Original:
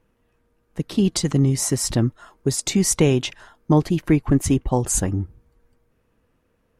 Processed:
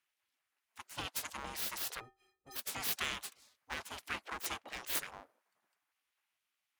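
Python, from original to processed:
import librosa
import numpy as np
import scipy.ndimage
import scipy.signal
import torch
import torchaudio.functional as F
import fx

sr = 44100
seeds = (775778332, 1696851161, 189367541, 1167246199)

y = np.abs(x)
y = fx.stiff_resonator(y, sr, f0_hz=370.0, decay_s=0.33, stiffness=0.03, at=(1.99, 2.55), fade=0.02)
y = fx.spec_gate(y, sr, threshold_db=-30, keep='weak')
y = F.gain(torch.from_numpy(y), -5.5).numpy()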